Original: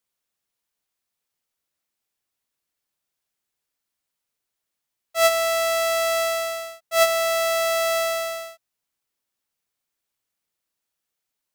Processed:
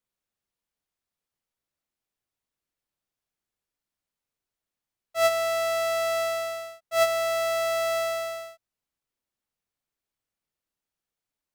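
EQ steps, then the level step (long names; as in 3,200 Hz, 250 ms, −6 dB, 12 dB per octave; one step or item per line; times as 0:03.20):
spectral tilt −1.5 dB per octave
−4.0 dB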